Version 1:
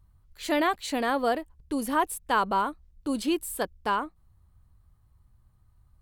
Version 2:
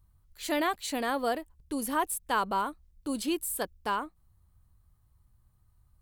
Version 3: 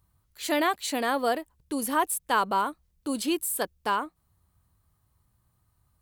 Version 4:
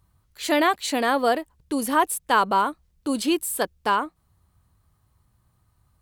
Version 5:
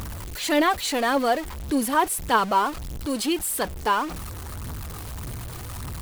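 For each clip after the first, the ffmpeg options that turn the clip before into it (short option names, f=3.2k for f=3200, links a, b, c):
-af "highshelf=f=5.9k:g=8,volume=-4dB"
-af "highpass=f=170:p=1,volume=4dB"
-af "highshelf=f=9.6k:g=-7,volume=5dB"
-af "aeval=exprs='val(0)+0.5*0.0422*sgn(val(0))':c=same,acompressor=mode=upward:threshold=-36dB:ratio=2.5,aphaser=in_gain=1:out_gain=1:delay=2.8:decay=0.34:speed=1.7:type=triangular,volume=-2.5dB"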